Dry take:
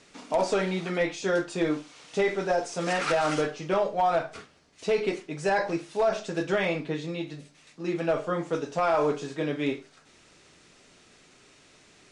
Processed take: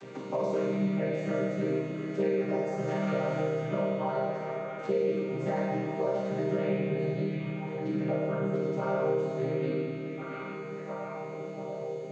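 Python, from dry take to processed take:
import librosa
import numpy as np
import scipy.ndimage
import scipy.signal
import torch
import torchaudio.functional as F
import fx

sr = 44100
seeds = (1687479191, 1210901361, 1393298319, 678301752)

y = fx.chord_vocoder(x, sr, chord='minor triad', root=48)
y = fx.doubler(y, sr, ms=15.0, db=-7.0)
y = fx.echo_stepped(y, sr, ms=698, hz=2700.0, octaves=-0.7, feedback_pct=70, wet_db=-8.5)
y = fx.rev_schroeder(y, sr, rt60_s=1.9, comb_ms=32, drr_db=-3.0)
y = fx.band_squash(y, sr, depth_pct=70)
y = F.gain(torch.from_numpy(y), -8.0).numpy()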